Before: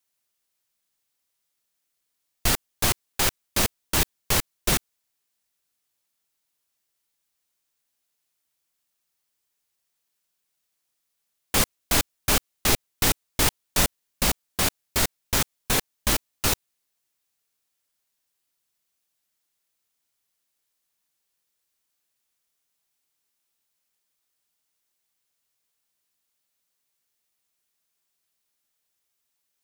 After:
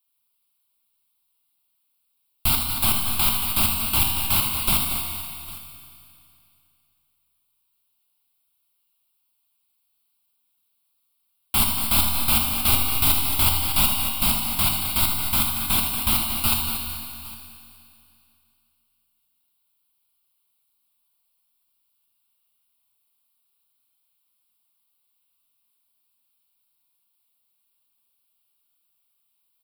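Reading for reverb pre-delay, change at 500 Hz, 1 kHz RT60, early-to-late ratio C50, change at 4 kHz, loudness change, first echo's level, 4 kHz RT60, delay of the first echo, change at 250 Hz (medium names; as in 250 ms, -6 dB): 4 ms, -8.0 dB, 2.6 s, 1.5 dB, +3.0 dB, +4.0 dB, -8.5 dB, 2.7 s, 79 ms, +0.5 dB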